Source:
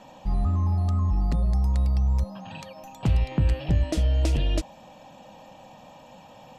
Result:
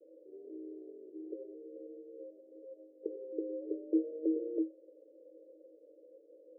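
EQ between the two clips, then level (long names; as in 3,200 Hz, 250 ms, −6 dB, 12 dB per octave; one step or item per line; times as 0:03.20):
Chebyshev high-pass with heavy ripple 310 Hz, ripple 9 dB
Butterworth low-pass 540 Hz 96 dB per octave
+6.0 dB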